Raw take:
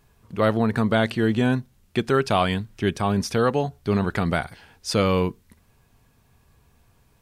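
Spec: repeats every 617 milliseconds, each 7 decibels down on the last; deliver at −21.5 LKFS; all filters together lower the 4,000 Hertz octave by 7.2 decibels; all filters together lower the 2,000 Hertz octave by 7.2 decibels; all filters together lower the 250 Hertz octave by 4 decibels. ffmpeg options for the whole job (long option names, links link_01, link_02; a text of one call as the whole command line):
ffmpeg -i in.wav -af "equalizer=frequency=250:width_type=o:gain=-5,equalizer=frequency=2000:width_type=o:gain=-9,equalizer=frequency=4000:width_type=o:gain=-6.5,aecho=1:1:617|1234|1851|2468|3085:0.447|0.201|0.0905|0.0407|0.0183,volume=4dB" out.wav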